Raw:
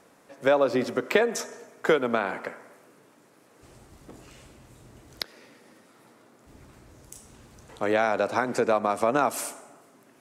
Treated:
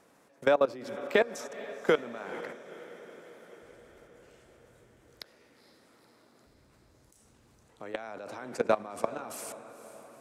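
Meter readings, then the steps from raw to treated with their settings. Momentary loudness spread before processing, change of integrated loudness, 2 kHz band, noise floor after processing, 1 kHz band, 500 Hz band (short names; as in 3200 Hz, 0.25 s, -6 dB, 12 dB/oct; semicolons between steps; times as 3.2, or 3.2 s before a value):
14 LU, -6.0 dB, -6.0 dB, -63 dBFS, -8.5 dB, -5.0 dB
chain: level quantiser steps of 21 dB; diffused feedback echo 0.475 s, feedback 63%, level -15.5 dB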